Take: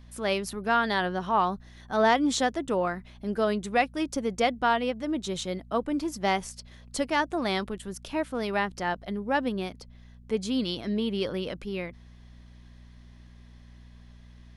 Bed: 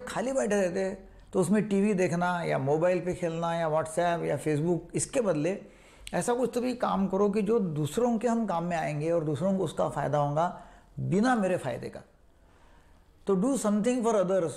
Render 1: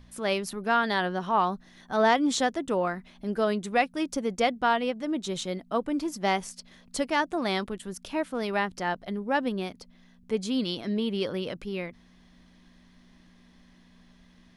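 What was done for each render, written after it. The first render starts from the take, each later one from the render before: de-hum 60 Hz, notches 2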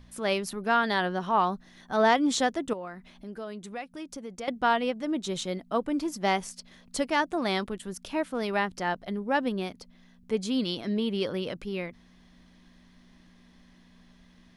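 2.73–4.48 compressor 2:1, threshold -44 dBFS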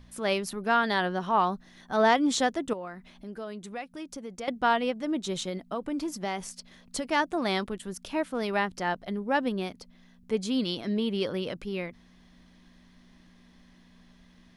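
5.48–7.05 compressor, threshold -27 dBFS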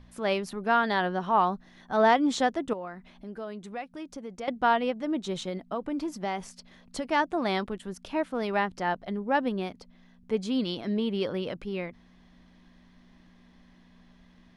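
LPF 3600 Hz 6 dB/oct; bell 810 Hz +2 dB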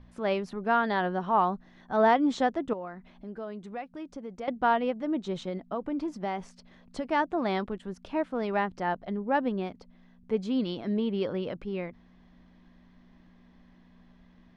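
LPF 7500 Hz 12 dB/oct; high shelf 2500 Hz -8.5 dB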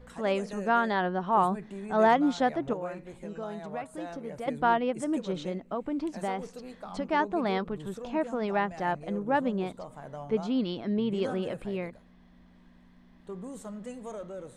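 add bed -14.5 dB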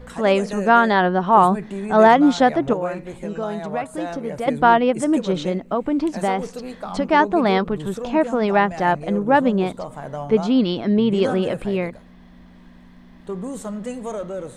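gain +11 dB; limiter -3 dBFS, peak gain reduction 2.5 dB

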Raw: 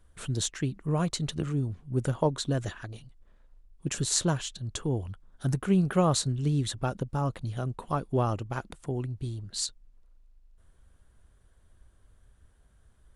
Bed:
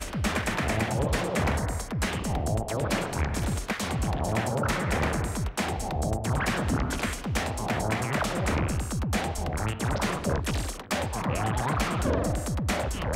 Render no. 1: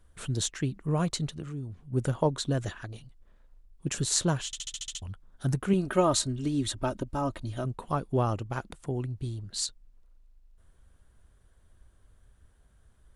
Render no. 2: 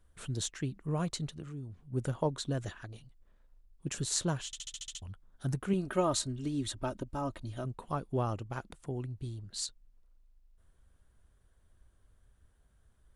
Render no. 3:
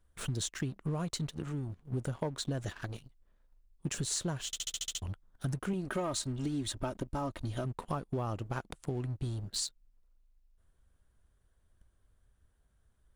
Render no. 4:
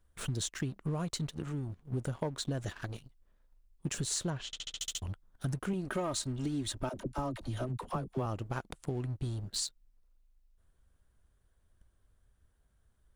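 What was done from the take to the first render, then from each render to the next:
1.28–1.93 compressor 1.5:1, threshold -47 dBFS; 4.46 stutter in place 0.07 s, 8 plays; 5.73–7.65 comb 3.2 ms
gain -5.5 dB
sample leveller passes 2; compressor, threshold -32 dBFS, peak gain reduction 12.5 dB
4.3–4.8 LPF 4300 Hz; 6.89–8.26 dispersion lows, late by 50 ms, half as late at 440 Hz

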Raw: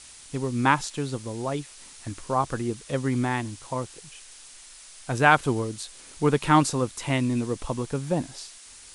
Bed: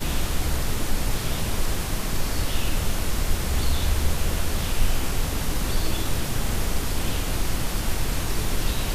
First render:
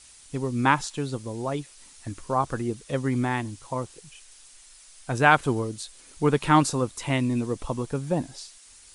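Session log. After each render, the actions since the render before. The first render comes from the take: denoiser 6 dB, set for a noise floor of -47 dBFS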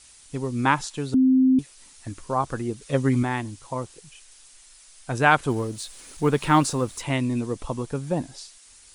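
1.14–1.59 bleep 260 Hz -14 dBFS; 2.81–3.23 comb 7.3 ms, depth 83%; 5.5–7.02 G.711 law mismatch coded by mu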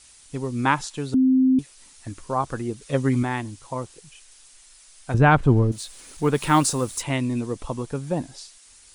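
5.14–5.72 RIAA curve playback; 6.34–7.02 high shelf 8800 Hz -> 5000 Hz +9.5 dB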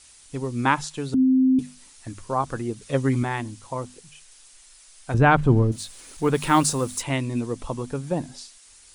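notches 50/100/150/200/250 Hz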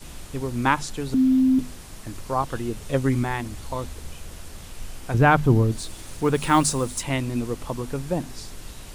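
add bed -15 dB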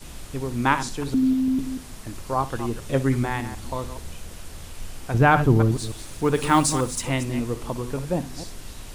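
reverse delay 0.148 s, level -11 dB; flutter echo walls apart 10.2 m, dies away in 0.22 s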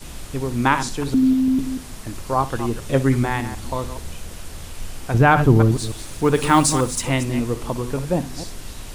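gain +4 dB; limiter -3 dBFS, peak gain reduction 3 dB

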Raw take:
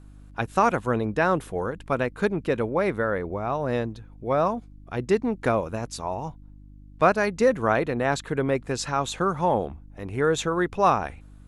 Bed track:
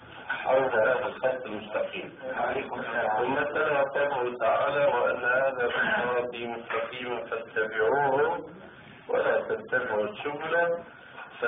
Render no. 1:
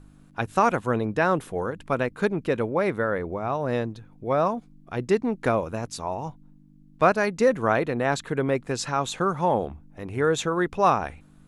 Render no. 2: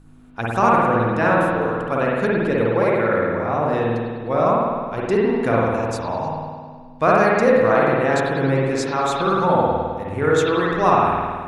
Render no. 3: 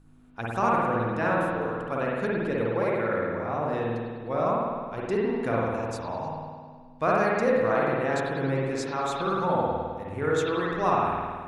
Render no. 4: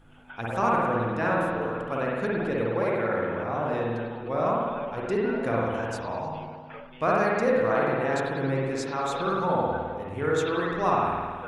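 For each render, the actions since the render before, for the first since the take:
de-hum 50 Hz, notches 2
spring tank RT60 1.7 s, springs 52 ms, chirp 50 ms, DRR -5 dB
gain -8 dB
add bed track -14 dB

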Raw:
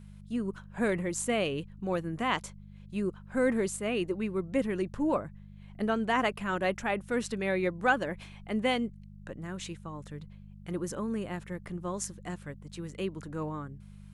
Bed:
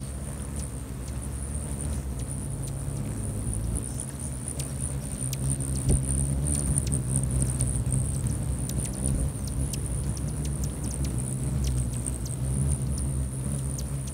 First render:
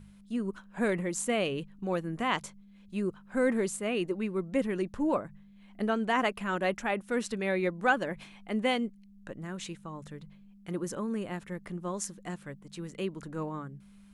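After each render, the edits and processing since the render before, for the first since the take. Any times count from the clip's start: de-hum 50 Hz, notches 3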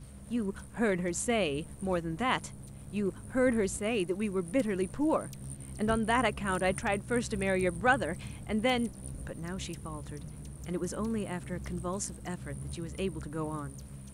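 add bed -15 dB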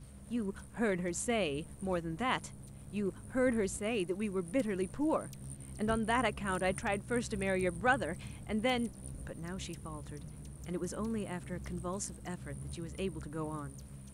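gain -3.5 dB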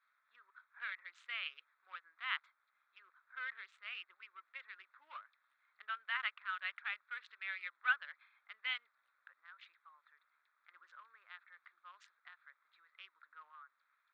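Wiener smoothing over 15 samples; elliptic band-pass 1300–3700 Hz, stop band 80 dB

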